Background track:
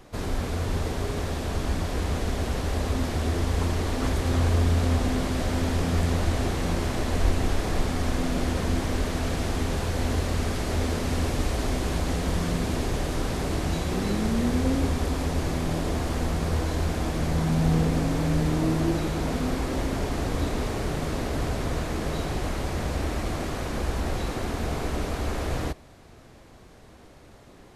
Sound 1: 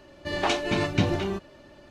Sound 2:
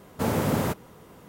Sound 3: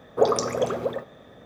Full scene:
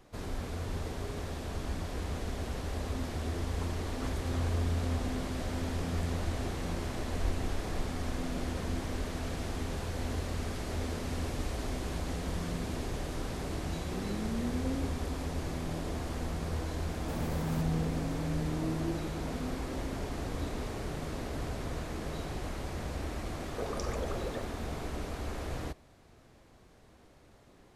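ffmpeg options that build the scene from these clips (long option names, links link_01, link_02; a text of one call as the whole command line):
ffmpeg -i bed.wav -i cue0.wav -i cue1.wav -i cue2.wav -filter_complex "[0:a]volume=-9dB[link_01];[2:a]acompressor=threshold=-26dB:ratio=6:attack=3.2:release=140:knee=1:detection=peak[link_02];[3:a]acompressor=threshold=-33dB:ratio=6:attack=3.2:release=140:knee=1:detection=peak[link_03];[link_02]atrim=end=1.28,asetpts=PTS-STARTPTS,volume=-10dB,afade=type=in:duration=0.004:curve=hsin,afade=type=out:start_time=1.276:duration=0.004:curve=hsin,adelay=16890[link_04];[link_03]atrim=end=1.45,asetpts=PTS-STARTPTS,volume=-2.5dB,afade=type=in:duration=0.004:curve=hsin,afade=type=out:start_time=1.446:duration=0.004:curve=hsin,adelay=23410[link_05];[link_01][link_04][link_05]amix=inputs=3:normalize=0" out.wav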